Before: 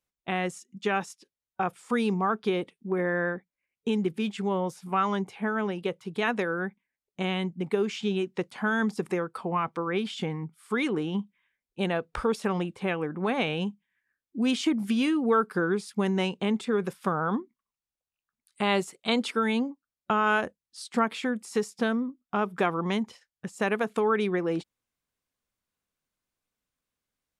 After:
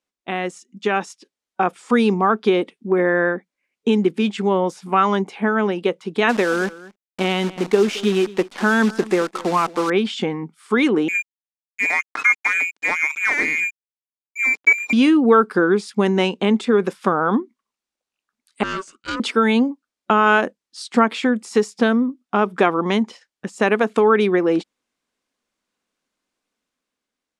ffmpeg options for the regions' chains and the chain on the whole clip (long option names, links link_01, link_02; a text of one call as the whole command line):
ffmpeg -i in.wav -filter_complex "[0:a]asettb=1/sr,asplit=3[link_01][link_02][link_03];[link_01]atrim=end=6.294[link_04];[link_02]atrim=start=6.29:end=9.9,asetpts=PTS-STARTPTS,afade=type=in:duration=0.004:curve=qsin,afade=type=out:start_time=3.606:duration=0.004:curve=qsin,acrusher=bits=7:dc=4:mix=0:aa=0.000001,aecho=1:1:221:0.112,atrim=end_sample=159201[link_05];[link_03]atrim=start=9.896[link_06];[link_04][link_05]acrossfade=duration=0.004:curve1=hsin:curve2=qsin[link_07];[link_07][link_06]acrossfade=duration=0.004:curve1=qsin:curve2=hsin,asettb=1/sr,asplit=3[link_08][link_09][link_10];[link_08]atrim=end=11.084[link_11];[link_09]atrim=start=11.08:end=14.93,asetpts=PTS-STARTPTS,afade=type=in:duration=0.004:curve=qsin,afade=type=out:start_time=3.846:duration=0.004:curve=qsin,aecho=1:1:6.5:0.39,atrim=end_sample=169785,lowpass=frequency=2200:width_type=q:width=0.5098,lowpass=frequency=2200:width_type=q:width=0.6013,lowpass=frequency=2200:width_type=q:width=0.9,lowpass=frequency=2200:width_type=q:width=2.563,afreqshift=-2600,aeval=exprs='sgn(val(0))*max(abs(val(0))-0.0106,0)':channel_layout=same[link_12];[link_10]atrim=start=14.926[link_13];[link_11][link_12]acrossfade=duration=0.004:curve1=hsin:curve2=qsin[link_14];[link_14][link_13]acrossfade=duration=0.004:curve1=qsin:curve2=hsin,asettb=1/sr,asplit=3[link_15][link_16][link_17];[link_15]atrim=end=18.634[link_18];[link_16]atrim=start=18.63:end=19.2,asetpts=PTS-STARTPTS,afade=type=in:duration=0.004:curve=qsin,afade=type=out:start_time=0.566:duration=0.004:curve=qsin,aeval=exprs='(tanh(15.8*val(0)+0.45)-tanh(0.45))/15.8':channel_layout=same,highpass=440,equalizer=frequency=680:width_type=q:width=4:gain=8,equalizer=frequency=1100:width_type=q:width=4:gain=-4,equalizer=frequency=2700:width_type=q:width=4:gain=-7,equalizer=frequency=4600:width_type=q:width=4:gain=-9,lowpass=frequency=7800:width=0.5412,lowpass=frequency=7800:width=1.3066,aeval=exprs='val(0)*sin(2*PI*760*n/s)':channel_layout=same[link_19];[link_17]atrim=start=19.196[link_20];[link_18][link_19]acrossfade=duration=0.004:curve1=hsin:curve2=qsin[link_21];[link_21][link_20]acrossfade=duration=0.004:curve1=qsin:curve2=hsin,lowpass=8000,lowshelf=frequency=170:width_type=q:width=1.5:gain=-11,dynaudnorm=framelen=290:gausssize=7:maxgain=5dB,volume=4dB" out.wav